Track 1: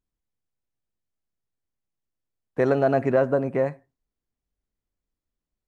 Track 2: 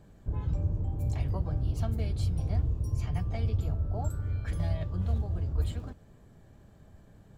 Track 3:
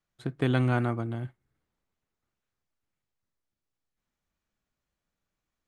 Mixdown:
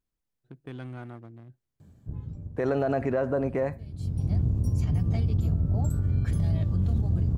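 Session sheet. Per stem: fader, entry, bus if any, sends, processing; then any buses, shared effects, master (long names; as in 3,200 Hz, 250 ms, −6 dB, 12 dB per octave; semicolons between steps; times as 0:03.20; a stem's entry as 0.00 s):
−0.5 dB, 0.00 s, no send, no processing
+0.5 dB, 1.80 s, no send, sub-octave generator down 1 octave, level −1 dB; high-pass filter 100 Hz 12 dB per octave; bass and treble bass +13 dB, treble +6 dB; automatic ducking −22 dB, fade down 1.00 s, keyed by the first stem
−13.5 dB, 0.25 s, no send, adaptive Wiener filter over 41 samples; soft clipping −13 dBFS, distortion −23 dB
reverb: not used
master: brickwall limiter −17.5 dBFS, peak gain reduction 9 dB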